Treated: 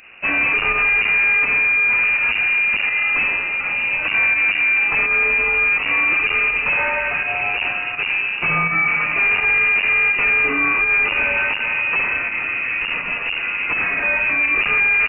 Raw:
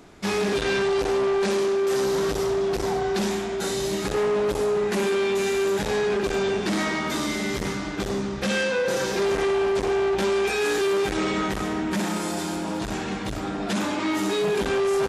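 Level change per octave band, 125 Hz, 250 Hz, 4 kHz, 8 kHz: -4.5 dB, -9.5 dB, +1.0 dB, under -40 dB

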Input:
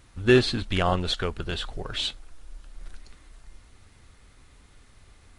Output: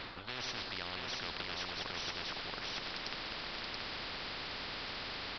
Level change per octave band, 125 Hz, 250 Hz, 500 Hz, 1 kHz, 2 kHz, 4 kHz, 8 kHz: -20.5 dB, -20.0 dB, -19.5 dB, -9.0 dB, -7.0 dB, -6.0 dB, -8.0 dB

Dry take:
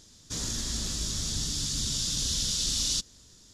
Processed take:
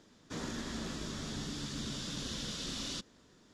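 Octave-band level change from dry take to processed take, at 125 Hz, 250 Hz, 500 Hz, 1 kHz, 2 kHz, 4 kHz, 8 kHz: -7.0 dB, 0.0 dB, +2.5 dB, +2.0 dB, -0.5 dB, -11.5 dB, -16.5 dB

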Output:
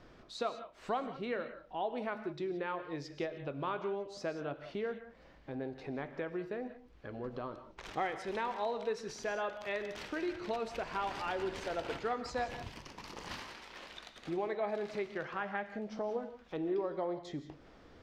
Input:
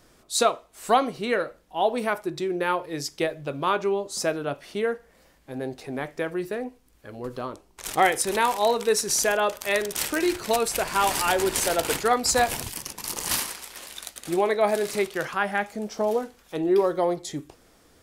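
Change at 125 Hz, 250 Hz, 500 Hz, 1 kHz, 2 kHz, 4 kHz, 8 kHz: -9.0 dB, -10.5 dB, -12.5 dB, -13.5 dB, -13.5 dB, -17.0 dB, -28.5 dB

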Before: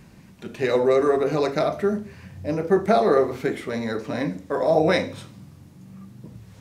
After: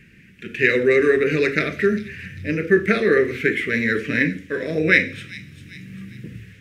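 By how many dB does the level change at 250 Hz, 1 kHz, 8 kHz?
+3.0 dB, -8.0 dB, no reading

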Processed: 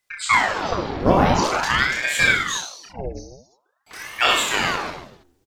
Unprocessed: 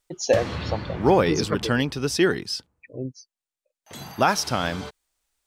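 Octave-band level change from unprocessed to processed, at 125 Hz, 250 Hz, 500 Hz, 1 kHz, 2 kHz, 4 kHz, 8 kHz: -0.5 dB, -1.0 dB, -2.5 dB, +5.5 dB, +10.5 dB, +6.5 dB, +4.0 dB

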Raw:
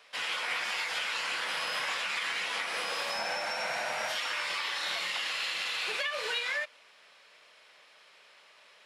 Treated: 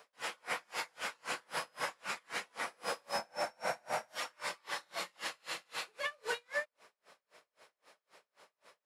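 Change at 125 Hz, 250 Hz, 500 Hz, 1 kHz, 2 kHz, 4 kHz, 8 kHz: no reading, -1.5 dB, -2.0 dB, -4.5 dB, -8.5 dB, -11.5 dB, -5.0 dB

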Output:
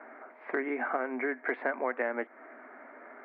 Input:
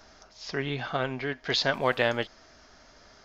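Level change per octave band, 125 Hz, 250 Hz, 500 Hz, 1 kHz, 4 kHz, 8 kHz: under -30 dB, -2.0 dB, -3.5 dB, -3.0 dB, under -30 dB, no reading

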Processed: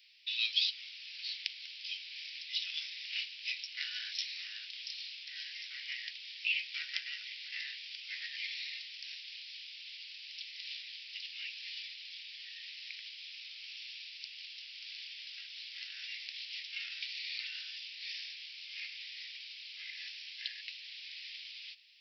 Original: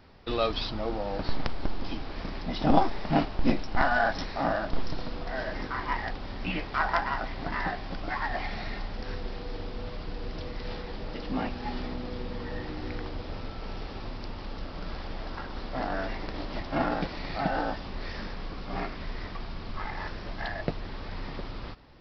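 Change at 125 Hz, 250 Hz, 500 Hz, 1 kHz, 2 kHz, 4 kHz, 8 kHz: under -40 dB, under -40 dB, under -40 dB, under -40 dB, -6.5 dB, +4.5 dB, no reading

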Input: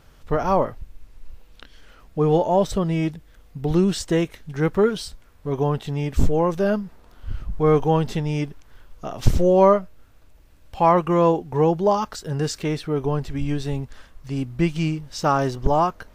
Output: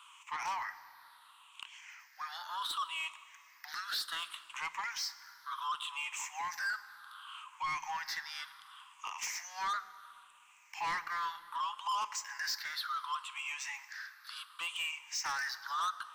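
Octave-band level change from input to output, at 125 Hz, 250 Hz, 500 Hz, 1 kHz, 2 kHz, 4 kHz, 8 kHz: under -40 dB, under -40 dB, under -40 dB, -13.0 dB, -1.5 dB, -2.0 dB, -3.5 dB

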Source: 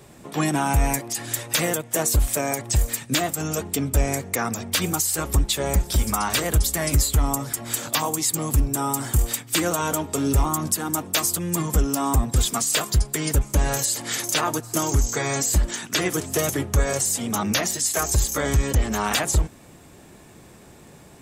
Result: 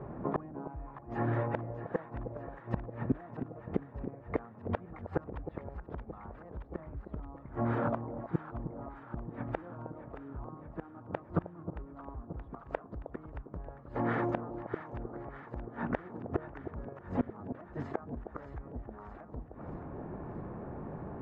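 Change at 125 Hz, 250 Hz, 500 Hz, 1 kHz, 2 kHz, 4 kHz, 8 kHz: -14.5 dB, -11.0 dB, -11.0 dB, -13.5 dB, -17.5 dB, under -35 dB, under -40 dB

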